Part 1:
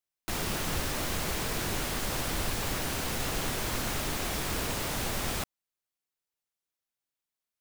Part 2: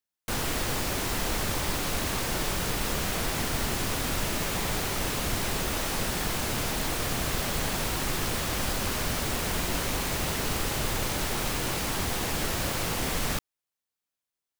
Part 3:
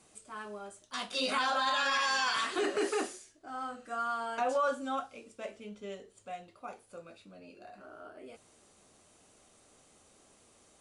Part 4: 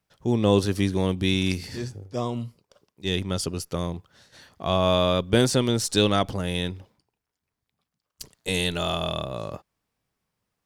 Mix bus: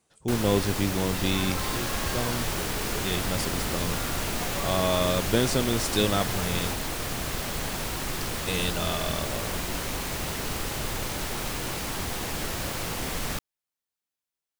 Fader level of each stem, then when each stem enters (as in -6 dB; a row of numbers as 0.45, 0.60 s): -3.0, -2.0, -9.5, -4.0 dB; 1.30, 0.00, 0.00, 0.00 s